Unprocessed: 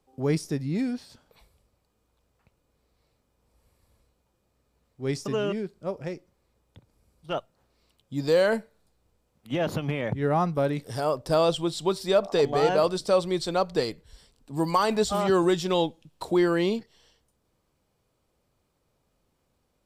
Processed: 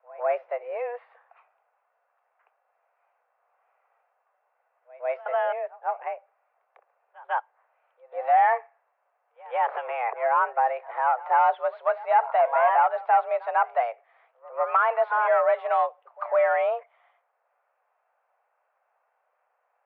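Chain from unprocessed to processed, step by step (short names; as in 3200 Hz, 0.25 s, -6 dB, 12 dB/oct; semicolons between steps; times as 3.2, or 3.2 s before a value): overdrive pedal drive 14 dB, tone 1200 Hz, clips at -9.5 dBFS; pre-echo 0.149 s -21 dB; mistuned SSB +240 Hz 280–2200 Hz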